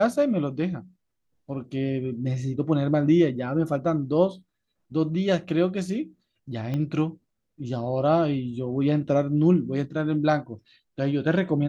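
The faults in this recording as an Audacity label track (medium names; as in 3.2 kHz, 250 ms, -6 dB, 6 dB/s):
6.740000	6.740000	pop -19 dBFS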